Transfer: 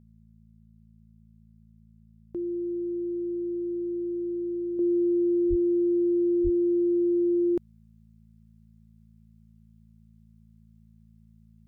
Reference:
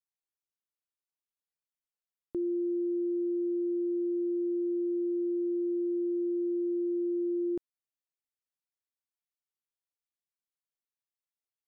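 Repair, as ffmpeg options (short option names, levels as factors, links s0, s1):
-filter_complex "[0:a]bandreject=f=55:t=h:w=4,bandreject=f=110:t=h:w=4,bandreject=f=165:t=h:w=4,bandreject=f=220:t=h:w=4,asplit=3[s0][s1][s2];[s0]afade=t=out:st=5.49:d=0.02[s3];[s1]highpass=f=140:w=0.5412,highpass=f=140:w=1.3066,afade=t=in:st=5.49:d=0.02,afade=t=out:st=5.61:d=0.02[s4];[s2]afade=t=in:st=5.61:d=0.02[s5];[s3][s4][s5]amix=inputs=3:normalize=0,asplit=3[s6][s7][s8];[s6]afade=t=out:st=6.43:d=0.02[s9];[s7]highpass=f=140:w=0.5412,highpass=f=140:w=1.3066,afade=t=in:st=6.43:d=0.02,afade=t=out:st=6.55:d=0.02[s10];[s8]afade=t=in:st=6.55:d=0.02[s11];[s9][s10][s11]amix=inputs=3:normalize=0,asetnsamples=n=441:p=0,asendcmd='4.79 volume volume -7dB',volume=1"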